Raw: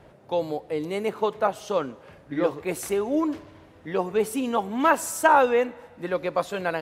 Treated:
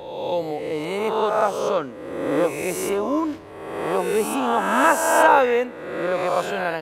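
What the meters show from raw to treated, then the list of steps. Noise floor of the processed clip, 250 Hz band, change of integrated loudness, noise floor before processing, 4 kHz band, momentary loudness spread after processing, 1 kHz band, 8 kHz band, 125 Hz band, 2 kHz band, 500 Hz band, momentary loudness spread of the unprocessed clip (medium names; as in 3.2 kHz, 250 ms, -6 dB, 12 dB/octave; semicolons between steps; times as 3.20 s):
-37 dBFS, +2.0 dB, +4.0 dB, -52 dBFS, +5.5 dB, 12 LU, +4.5 dB, +4.5 dB, +2.5 dB, +5.5 dB, +4.0 dB, 12 LU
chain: reverse spectral sustain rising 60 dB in 1.31 s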